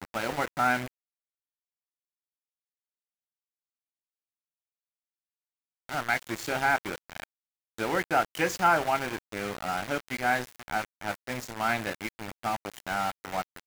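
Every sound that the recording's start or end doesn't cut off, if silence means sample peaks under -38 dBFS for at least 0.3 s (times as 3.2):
5.89–7.24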